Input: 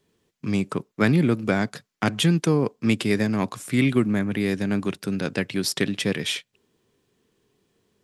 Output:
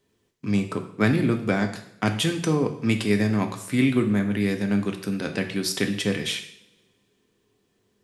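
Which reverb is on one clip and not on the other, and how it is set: two-slope reverb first 0.61 s, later 1.9 s, from -23 dB, DRR 4.5 dB; trim -2 dB

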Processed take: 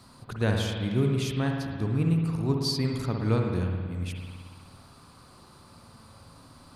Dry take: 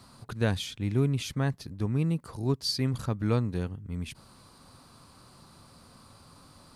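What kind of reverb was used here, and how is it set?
spring tank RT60 1.8 s, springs 55 ms, chirp 60 ms, DRR 1 dB

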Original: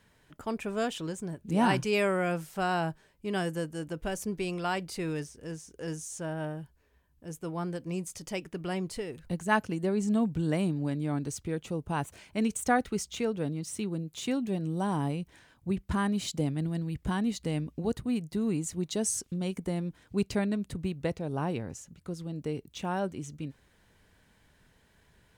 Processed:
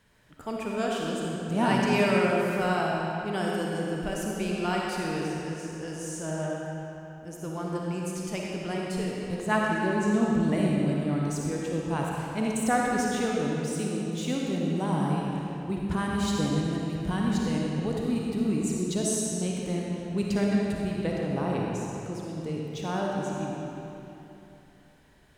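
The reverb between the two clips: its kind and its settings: algorithmic reverb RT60 3.1 s, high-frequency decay 0.8×, pre-delay 15 ms, DRR -3 dB; trim -1 dB

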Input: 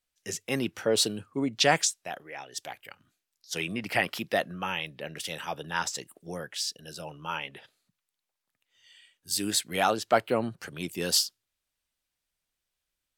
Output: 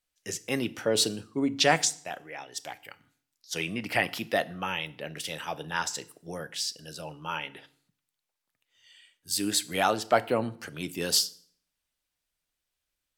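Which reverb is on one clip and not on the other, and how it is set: FDN reverb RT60 0.55 s, low-frequency decay 1.25×, high-frequency decay 0.9×, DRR 14 dB

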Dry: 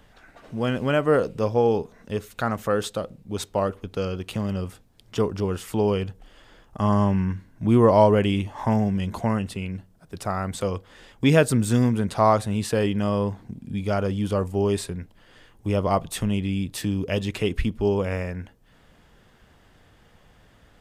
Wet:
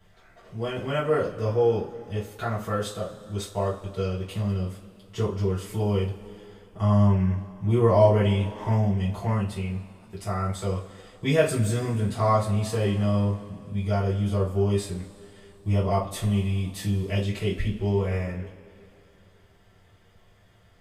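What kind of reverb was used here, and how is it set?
two-slope reverb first 0.27 s, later 2.8 s, from -22 dB, DRR -9 dB; trim -13 dB

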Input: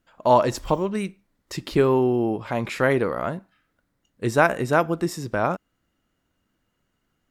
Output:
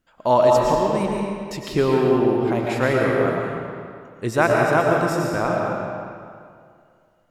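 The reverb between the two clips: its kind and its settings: algorithmic reverb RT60 2.2 s, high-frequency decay 0.8×, pre-delay 75 ms, DRR -1.5 dB; trim -1 dB

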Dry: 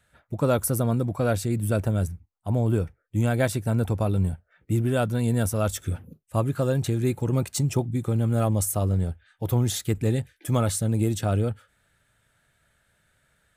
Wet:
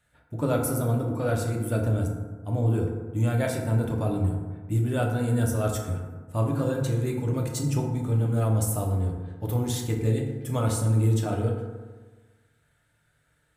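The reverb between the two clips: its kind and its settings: FDN reverb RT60 1.4 s, low-frequency decay 1.05×, high-frequency decay 0.4×, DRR -0.5 dB; trim -5.5 dB

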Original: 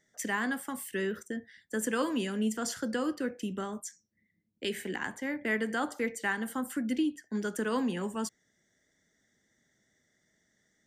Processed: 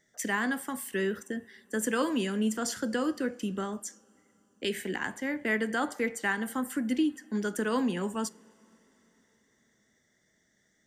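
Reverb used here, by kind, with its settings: two-slope reverb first 0.29 s, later 4.2 s, from -18 dB, DRR 19 dB; trim +2 dB

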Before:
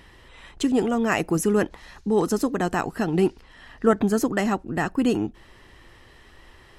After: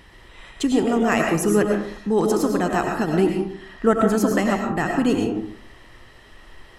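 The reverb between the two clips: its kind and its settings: algorithmic reverb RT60 0.59 s, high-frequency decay 0.55×, pre-delay 65 ms, DRR 1.5 dB; trim +1 dB

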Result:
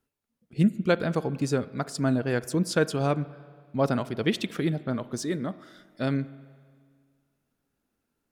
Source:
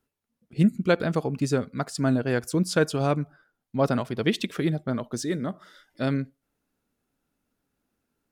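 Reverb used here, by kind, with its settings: spring tank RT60 1.9 s, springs 36/47 ms, chirp 30 ms, DRR 17 dB; trim -1.5 dB

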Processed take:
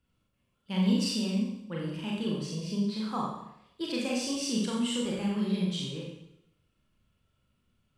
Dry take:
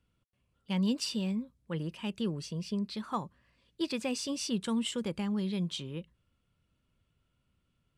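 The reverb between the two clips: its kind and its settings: Schroeder reverb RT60 0.8 s, combs from 29 ms, DRR -4 dB; trim -2.5 dB

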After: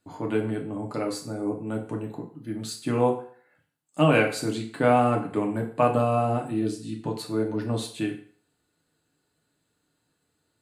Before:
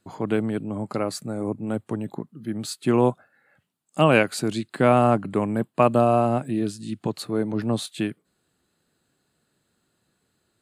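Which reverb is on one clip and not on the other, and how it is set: FDN reverb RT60 0.5 s, low-frequency decay 0.8×, high-frequency decay 0.9×, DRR 0 dB; trim -5.5 dB

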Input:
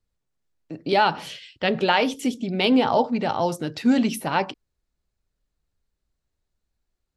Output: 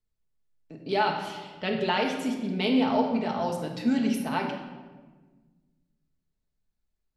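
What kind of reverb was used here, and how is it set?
simulated room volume 1100 m³, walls mixed, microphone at 1.5 m; trim -8.5 dB

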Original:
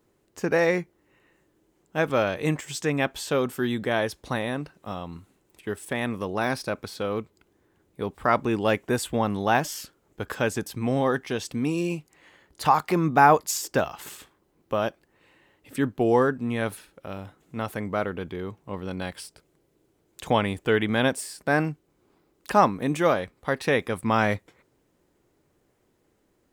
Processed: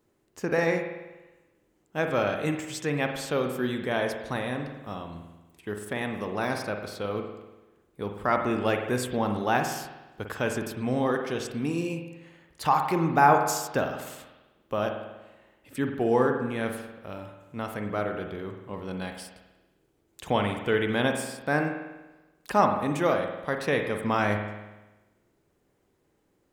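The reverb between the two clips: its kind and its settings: spring tank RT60 1.1 s, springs 48 ms, chirp 70 ms, DRR 4.5 dB; trim -3.5 dB

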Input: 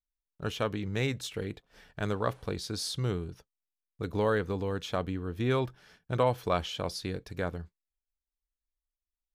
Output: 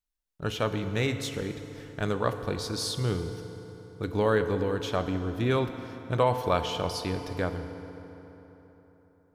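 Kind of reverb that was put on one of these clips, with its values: FDN reverb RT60 3.9 s, high-frequency decay 0.6×, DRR 7.5 dB; trim +2.5 dB

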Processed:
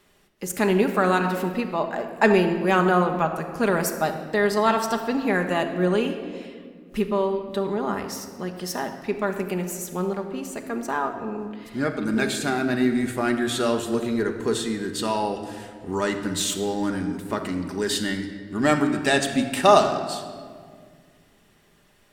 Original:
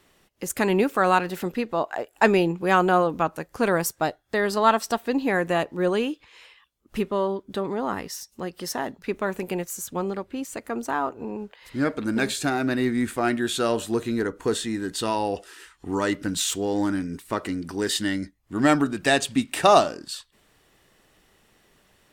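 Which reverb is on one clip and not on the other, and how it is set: simulated room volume 3000 m³, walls mixed, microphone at 1.3 m; trim -1 dB

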